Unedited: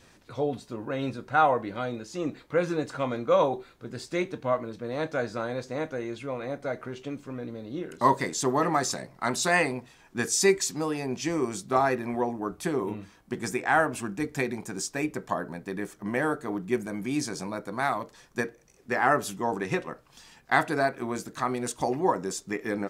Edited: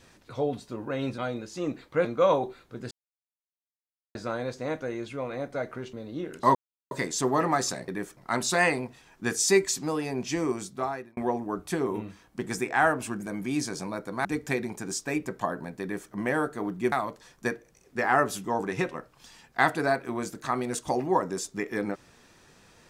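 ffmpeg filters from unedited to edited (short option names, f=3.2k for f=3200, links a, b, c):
-filter_complex "[0:a]asplit=13[a][b][c][d][e][f][g][h][i][j][k][l][m];[a]atrim=end=1.182[n];[b]atrim=start=1.758:end=2.632[o];[c]atrim=start=3.148:end=4.01,asetpts=PTS-STARTPTS,afade=t=out:st=0.858:d=0.004:c=hsin[p];[d]atrim=start=4.01:end=5.25,asetpts=PTS-STARTPTS,volume=0[q];[e]atrim=start=5.25:end=7.032,asetpts=PTS-STARTPTS,afade=t=in:d=0.004:c=hsin[r];[f]atrim=start=7.508:end=8.13,asetpts=PTS-STARTPTS,afade=t=out:st=0.618:d=0.004:c=hsin,apad=pad_dur=0.36[s];[g]atrim=start=8.13:end=9.102,asetpts=PTS-STARTPTS,afade=t=in:d=0.004:c=hsin[t];[h]atrim=start=15.698:end=15.992[u];[i]atrim=start=9.098:end=12.1,asetpts=PTS-STARTPTS,afade=t=out:st=2.282:d=0.72[v];[j]atrim=start=12.1:end=14.132,asetpts=PTS-STARTPTS,afade=t=in:d=0.004:c=hsin[w];[k]atrim=start=16.798:end=17.852[x];[l]atrim=start=14.128:end=16.802[y];[m]atrim=start=17.848[z];[n][o]acrossfade=d=0.004:c1=hsin:c2=hsin[aa];[p][q][r]concat=n=3:v=0:a=1[ab];[aa][ab]acrossfade=d=0.004:c1=hsin:c2=hsin[ac];[s][t]concat=n=2:v=0:a=1[ad];[ac][ad]acrossfade=d=0.004:c1=hsin:c2=hsin[ae];[ae][u]acrossfade=d=0.004:c1=hsin:c2=hsin[af];[v][w]concat=n=2:v=0:a=1[ag];[af][ag]acrossfade=d=0.004:c1=hsin:c2=hsin[ah];[ah][x]acrossfade=d=0.004:c1=hsin:c2=hsin[ai];[ai][y]acrossfade=d=0.004:c1=hsin:c2=hsin[aj];[aj][z]acrossfade=d=0.004:c1=hsin:c2=hsin"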